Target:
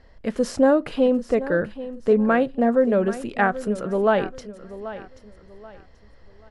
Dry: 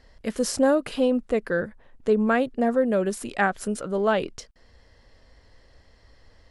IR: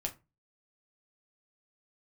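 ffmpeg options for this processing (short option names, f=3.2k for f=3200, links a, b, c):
-filter_complex "[0:a]lowpass=f=2.1k:p=1,aecho=1:1:783|1566|2349:0.188|0.0584|0.0181,asplit=2[a][b];[1:a]atrim=start_sample=2205[c];[b][c]afir=irnorm=-1:irlink=0,volume=-15dB[d];[a][d]amix=inputs=2:normalize=0,volume=2dB"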